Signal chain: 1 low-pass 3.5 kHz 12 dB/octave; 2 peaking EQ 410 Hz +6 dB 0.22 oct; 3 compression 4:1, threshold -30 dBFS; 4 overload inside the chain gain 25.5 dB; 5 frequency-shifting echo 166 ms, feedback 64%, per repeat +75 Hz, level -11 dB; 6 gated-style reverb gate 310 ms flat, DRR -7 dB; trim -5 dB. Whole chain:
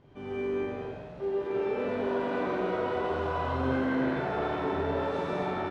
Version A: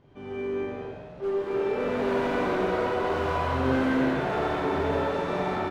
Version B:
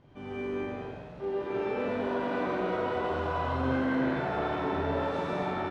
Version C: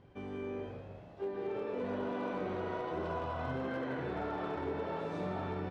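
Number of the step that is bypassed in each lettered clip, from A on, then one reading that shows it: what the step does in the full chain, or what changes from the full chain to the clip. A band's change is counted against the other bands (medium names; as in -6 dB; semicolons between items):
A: 3, momentary loudness spread change +3 LU; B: 2, 500 Hz band -2.0 dB; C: 6, crest factor change -2.5 dB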